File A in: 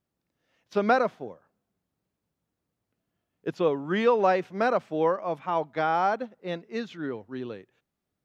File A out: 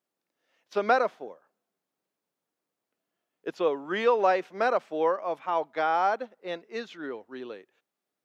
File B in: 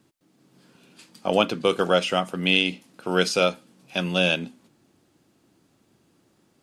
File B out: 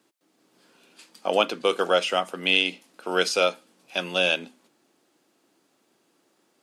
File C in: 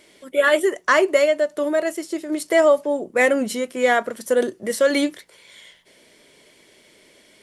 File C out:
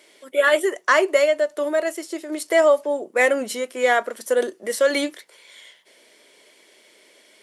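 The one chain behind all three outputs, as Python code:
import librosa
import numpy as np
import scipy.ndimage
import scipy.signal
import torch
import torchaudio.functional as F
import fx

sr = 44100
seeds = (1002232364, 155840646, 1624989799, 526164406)

y = scipy.signal.sosfilt(scipy.signal.butter(2, 360.0, 'highpass', fs=sr, output='sos'), x)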